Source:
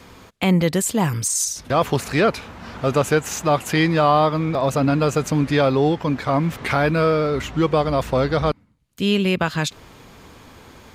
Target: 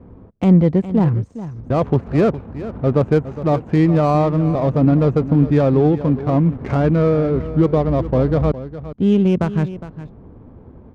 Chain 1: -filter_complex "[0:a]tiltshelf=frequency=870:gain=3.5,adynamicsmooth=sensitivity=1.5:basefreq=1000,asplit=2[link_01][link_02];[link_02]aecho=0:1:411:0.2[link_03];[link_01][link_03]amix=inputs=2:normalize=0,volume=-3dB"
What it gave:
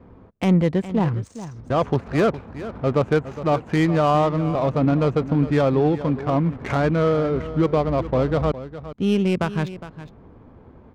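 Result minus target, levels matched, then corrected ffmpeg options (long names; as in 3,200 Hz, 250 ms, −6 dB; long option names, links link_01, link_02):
1,000 Hz band +4.5 dB
-filter_complex "[0:a]tiltshelf=frequency=870:gain=10,adynamicsmooth=sensitivity=1.5:basefreq=1000,asplit=2[link_01][link_02];[link_02]aecho=0:1:411:0.2[link_03];[link_01][link_03]amix=inputs=2:normalize=0,volume=-3dB"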